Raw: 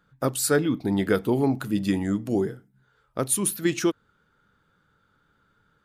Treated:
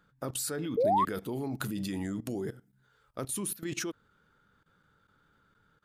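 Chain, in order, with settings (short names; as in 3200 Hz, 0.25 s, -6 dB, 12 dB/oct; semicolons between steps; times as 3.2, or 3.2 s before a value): 0.64–3.23 high shelf 3200 Hz +6 dB; level quantiser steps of 17 dB; 0.77–1.05 painted sound rise 430–1200 Hz -25 dBFS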